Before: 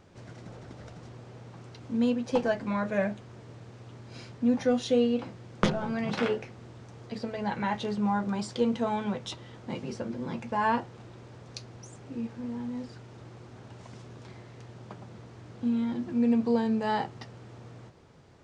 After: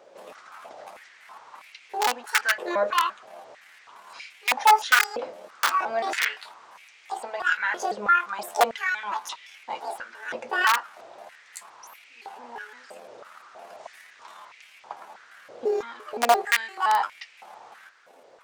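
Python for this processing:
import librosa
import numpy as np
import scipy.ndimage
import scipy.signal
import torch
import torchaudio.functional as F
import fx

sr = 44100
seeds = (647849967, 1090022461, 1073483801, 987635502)

y = fx.pitch_trill(x, sr, semitones=9.5, every_ms=172)
y = (np.mod(10.0 ** (18.0 / 20.0) * y + 1.0, 2.0) - 1.0) / 10.0 ** (18.0 / 20.0)
y = fx.filter_held_highpass(y, sr, hz=3.1, low_hz=550.0, high_hz=2300.0)
y = y * librosa.db_to_amplitude(2.5)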